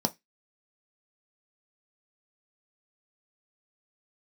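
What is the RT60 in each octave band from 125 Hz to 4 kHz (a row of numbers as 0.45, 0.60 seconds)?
0.20, 0.20, 0.15, 0.15, 0.20, 0.20 seconds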